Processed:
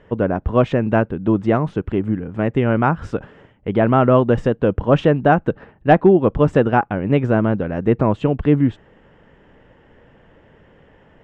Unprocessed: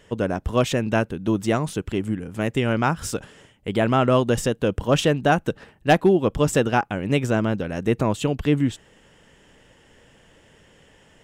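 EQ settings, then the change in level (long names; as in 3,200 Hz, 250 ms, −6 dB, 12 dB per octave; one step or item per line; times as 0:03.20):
low-pass filter 1,600 Hz 12 dB per octave
+5.0 dB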